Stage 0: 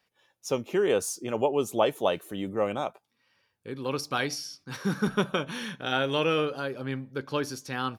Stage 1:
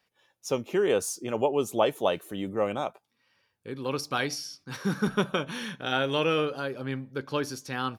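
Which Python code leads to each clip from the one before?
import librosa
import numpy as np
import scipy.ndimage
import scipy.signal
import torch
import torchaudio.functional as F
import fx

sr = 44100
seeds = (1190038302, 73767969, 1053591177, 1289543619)

y = x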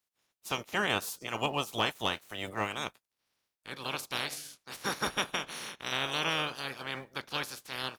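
y = fx.spec_clip(x, sr, under_db=27)
y = fx.leveller(y, sr, passes=1)
y = y * 10.0 ** (-9.0 / 20.0)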